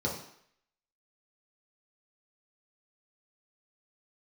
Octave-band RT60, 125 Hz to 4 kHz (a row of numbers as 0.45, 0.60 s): 0.50, 0.55, 0.65, 0.70, 0.70, 0.65 s